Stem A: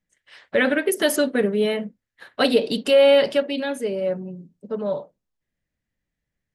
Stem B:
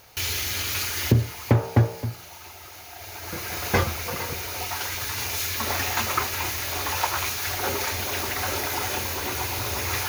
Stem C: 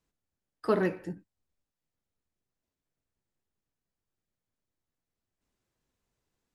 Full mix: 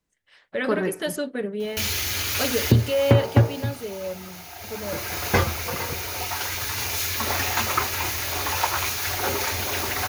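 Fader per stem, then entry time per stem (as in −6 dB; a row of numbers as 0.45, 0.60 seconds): −8.0, +1.5, +1.5 decibels; 0.00, 1.60, 0.00 seconds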